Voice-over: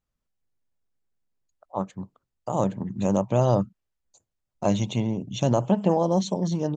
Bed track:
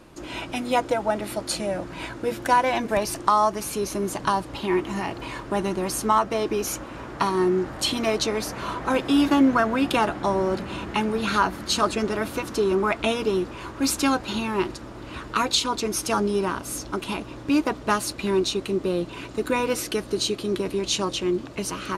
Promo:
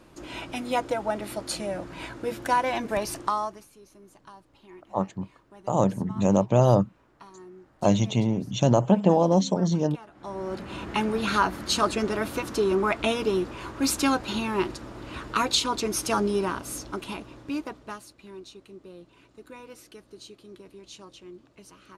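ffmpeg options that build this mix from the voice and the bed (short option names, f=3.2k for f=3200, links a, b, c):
-filter_complex "[0:a]adelay=3200,volume=2dB[a];[1:a]volume=20dB,afade=t=out:st=3.15:d=0.52:silence=0.0841395,afade=t=in:st=10.11:d=0.91:silence=0.0630957,afade=t=out:st=16.3:d=1.79:silence=0.105925[b];[a][b]amix=inputs=2:normalize=0"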